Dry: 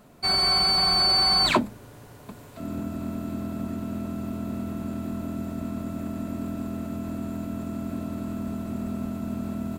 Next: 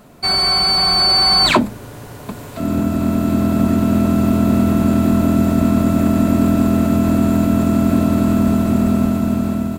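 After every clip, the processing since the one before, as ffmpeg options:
-filter_complex "[0:a]asplit=2[a][b];[b]alimiter=limit=-19.5dB:level=0:latency=1,volume=0.5dB[c];[a][c]amix=inputs=2:normalize=0,dynaudnorm=f=600:g=5:m=9.5dB,volume=2dB"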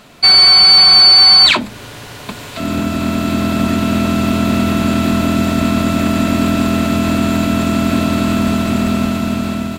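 -af "equalizer=f=3.3k:t=o:w=2.5:g=14,alimiter=limit=0dB:level=0:latency=1:release=249,volume=-1dB"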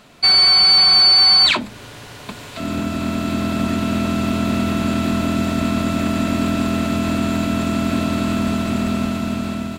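-af "equalizer=f=14k:w=1.4:g=-4,volume=-5dB"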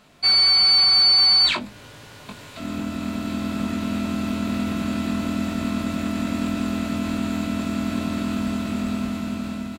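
-filter_complex "[0:a]asplit=2[a][b];[b]adelay=20,volume=-5dB[c];[a][c]amix=inputs=2:normalize=0,volume=-7.5dB"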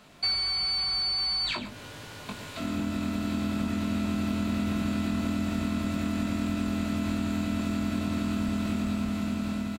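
-filter_complex "[0:a]acrossover=split=120[a][b];[b]acompressor=threshold=-29dB:ratio=3[c];[a][c]amix=inputs=2:normalize=0,aecho=1:1:110:0.237"

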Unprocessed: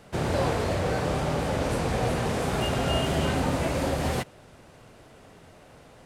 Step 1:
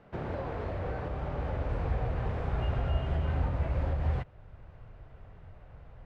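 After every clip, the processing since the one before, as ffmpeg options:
-af "alimiter=limit=-20dB:level=0:latency=1:release=467,lowpass=2k,asubboost=boost=11.5:cutoff=78,volume=-5.5dB"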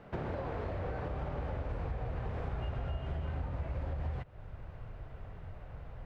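-af "acompressor=threshold=-38dB:ratio=6,volume=4dB"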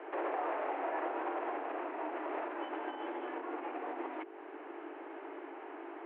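-af "aeval=exprs='val(0)+0.00398*(sin(2*PI*50*n/s)+sin(2*PI*2*50*n/s)/2+sin(2*PI*3*50*n/s)/3+sin(2*PI*4*50*n/s)/4+sin(2*PI*5*50*n/s)/5)':c=same,alimiter=level_in=8dB:limit=-24dB:level=0:latency=1:release=61,volume=-8dB,highpass=f=150:t=q:w=0.5412,highpass=f=150:t=q:w=1.307,lowpass=f=2.7k:t=q:w=0.5176,lowpass=f=2.7k:t=q:w=0.7071,lowpass=f=2.7k:t=q:w=1.932,afreqshift=190,volume=7dB"

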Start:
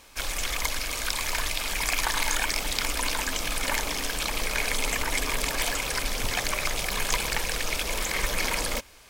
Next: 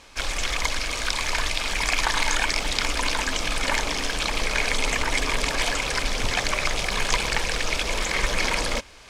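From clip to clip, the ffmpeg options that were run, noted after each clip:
-af "lowpass=6.8k,areverse,acompressor=mode=upward:threshold=-47dB:ratio=2.5,areverse,volume=4dB"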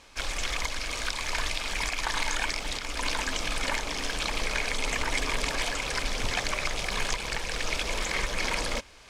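-af "alimiter=limit=-10dB:level=0:latency=1:release=295,volume=-4.5dB"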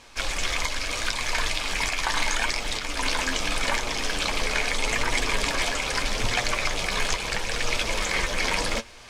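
-af "areverse,acompressor=mode=upward:threshold=-45dB:ratio=2.5,areverse,flanger=delay=8.3:depth=3.4:regen=46:speed=0.78:shape=sinusoidal,volume=8dB"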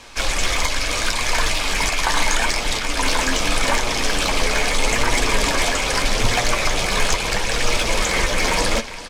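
-filter_complex "[0:a]aecho=1:1:398:0.141,acrossover=split=220|1100|5800[a][b][c][d];[c]asoftclip=type=tanh:threshold=-27.5dB[e];[a][b][e][d]amix=inputs=4:normalize=0,volume=8dB"

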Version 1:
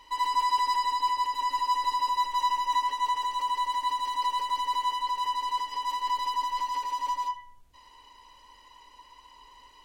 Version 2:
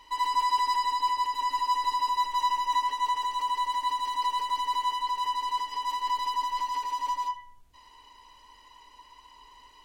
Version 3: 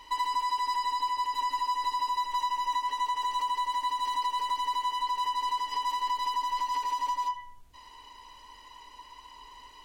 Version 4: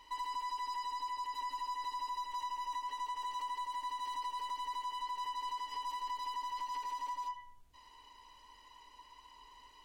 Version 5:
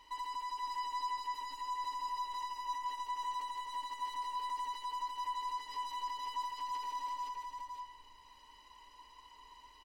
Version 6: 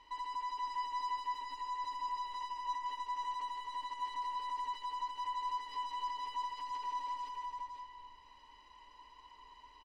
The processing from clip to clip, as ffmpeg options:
-af "bandreject=f=530:w=12"
-af "acompressor=threshold=-30dB:ratio=6,volume=3.5dB"
-af "aeval=exprs='(tanh(15.8*val(0)+0.15)-tanh(0.15))/15.8':c=same,volume=-8dB"
-af "aecho=1:1:519:0.631,volume=-1.5dB"
-filter_complex "[0:a]adynamicsmooth=sensitivity=5.5:basefreq=5.5k,asplit=2[a][b];[b]adelay=240,highpass=300,lowpass=3.4k,asoftclip=type=hard:threshold=-39.5dB,volume=-9dB[c];[a][c]amix=inputs=2:normalize=0"

